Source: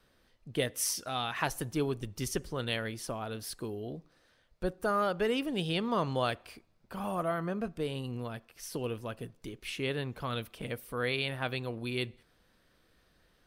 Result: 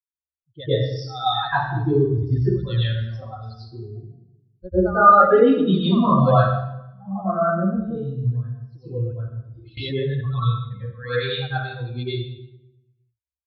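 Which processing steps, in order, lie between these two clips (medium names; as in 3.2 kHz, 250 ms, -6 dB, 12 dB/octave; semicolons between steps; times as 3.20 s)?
expander on every frequency bin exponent 3; reverberation RT60 0.85 s, pre-delay 94 ms, DRR -16 dB; resampled via 11.025 kHz; 9.77–10.21 s: level flattener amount 70%; trim -5 dB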